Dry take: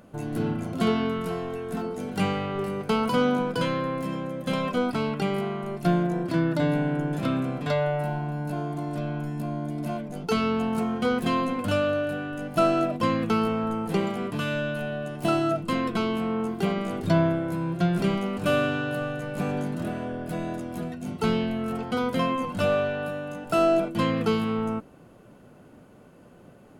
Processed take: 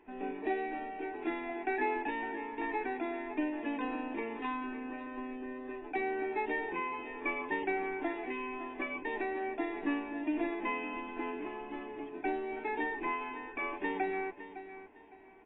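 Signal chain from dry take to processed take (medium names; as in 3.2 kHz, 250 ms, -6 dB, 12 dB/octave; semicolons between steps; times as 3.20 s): treble shelf 7.1 kHz +10.5 dB; static phaser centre 470 Hz, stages 8; feedback delay 969 ms, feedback 28%, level -13 dB; speed mistake 45 rpm record played at 78 rpm; trim -8 dB; AAC 16 kbps 22.05 kHz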